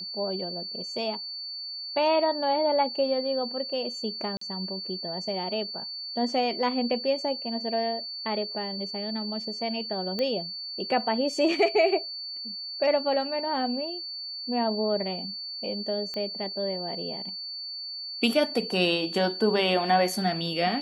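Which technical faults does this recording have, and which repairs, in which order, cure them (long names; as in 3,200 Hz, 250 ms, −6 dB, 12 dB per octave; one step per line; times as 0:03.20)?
whistle 4,500 Hz −34 dBFS
0:04.37–0:04.41: drop-out 44 ms
0:10.19: click −17 dBFS
0:16.14: click −21 dBFS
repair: click removal
notch filter 4,500 Hz, Q 30
repair the gap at 0:04.37, 44 ms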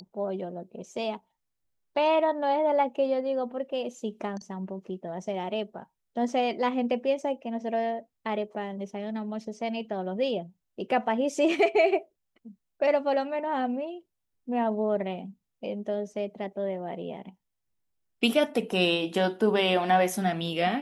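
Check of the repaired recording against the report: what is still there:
0:10.19: click
0:16.14: click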